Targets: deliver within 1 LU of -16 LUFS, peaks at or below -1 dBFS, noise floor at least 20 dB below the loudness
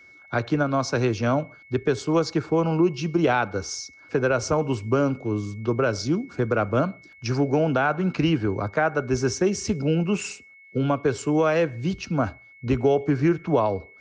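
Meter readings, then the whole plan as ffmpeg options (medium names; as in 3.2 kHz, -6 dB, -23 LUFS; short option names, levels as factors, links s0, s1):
steady tone 2.2 kHz; tone level -48 dBFS; loudness -24.0 LUFS; peak level -10.5 dBFS; loudness target -16.0 LUFS
-> -af "bandreject=f=2200:w=30"
-af "volume=2.51"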